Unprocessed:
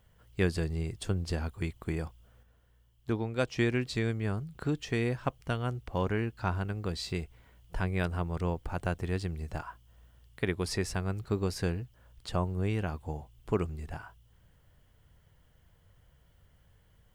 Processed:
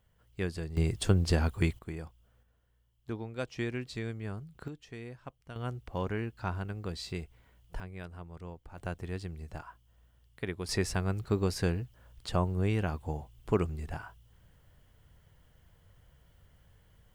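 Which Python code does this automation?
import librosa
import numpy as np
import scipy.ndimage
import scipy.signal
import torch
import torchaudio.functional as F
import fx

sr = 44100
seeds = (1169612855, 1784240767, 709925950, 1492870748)

y = fx.gain(x, sr, db=fx.steps((0.0, -6.0), (0.77, 6.0), (1.79, -6.5), (4.68, -14.0), (5.56, -3.5), (7.8, -13.0), (8.78, -5.5), (10.69, 1.5)))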